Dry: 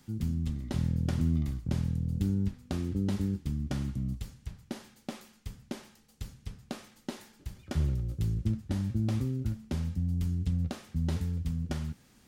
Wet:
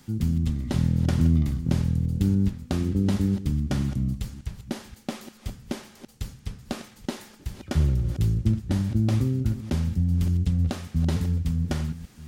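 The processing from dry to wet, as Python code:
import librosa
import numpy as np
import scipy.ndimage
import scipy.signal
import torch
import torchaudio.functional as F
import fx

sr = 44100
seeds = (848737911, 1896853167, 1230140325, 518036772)

y = fx.reverse_delay(x, sr, ms=294, wet_db=-13.5)
y = y * librosa.db_to_amplitude(7.0)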